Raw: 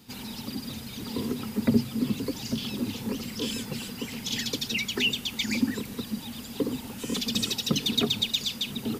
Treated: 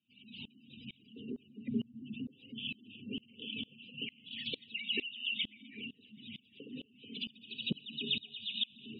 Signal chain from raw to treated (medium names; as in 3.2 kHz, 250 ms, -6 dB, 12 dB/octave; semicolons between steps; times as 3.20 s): peaking EQ 1.1 kHz -13 dB 2.4 oct; 5.29–7.49 s: compression, threshold -31 dBFS, peak gain reduction 10 dB; four-pole ladder low-pass 3.1 kHz, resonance 70%; bass shelf 150 Hz -8 dB; gated-style reverb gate 270 ms rising, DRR 5 dB; spectral gate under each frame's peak -15 dB strong; high-pass 110 Hz; hum notches 60/120/180/240/300/360/420 Hz; band-passed feedback delay 782 ms, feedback 64%, band-pass 1.2 kHz, level -18 dB; sawtooth tremolo in dB swelling 2.2 Hz, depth 27 dB; trim +10 dB